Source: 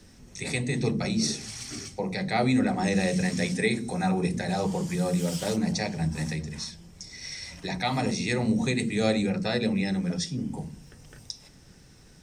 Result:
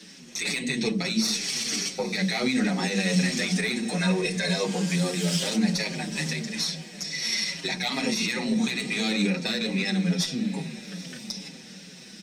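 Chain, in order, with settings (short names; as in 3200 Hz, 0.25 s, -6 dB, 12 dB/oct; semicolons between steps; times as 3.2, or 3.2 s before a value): in parallel at -1 dB: compressor, threshold -33 dBFS, peak gain reduction 13.5 dB; on the sum: weighting filter D; added harmonics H 6 -21 dB, 8 -44 dB, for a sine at -1.5 dBFS; 3.97–4.65 comb 1.9 ms, depth 81%; limiter -12.5 dBFS, peak gain reduction 11.5 dB; resonant low shelf 140 Hz -8.5 dB, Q 3; diffused feedback echo 0.855 s, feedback 44%, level -14.5 dB; endless flanger 6.4 ms -2.3 Hz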